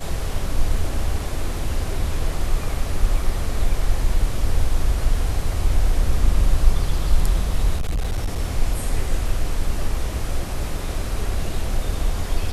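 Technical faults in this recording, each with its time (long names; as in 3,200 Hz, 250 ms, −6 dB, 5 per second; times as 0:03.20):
0:07.76–0:08.40: clipping −18.5 dBFS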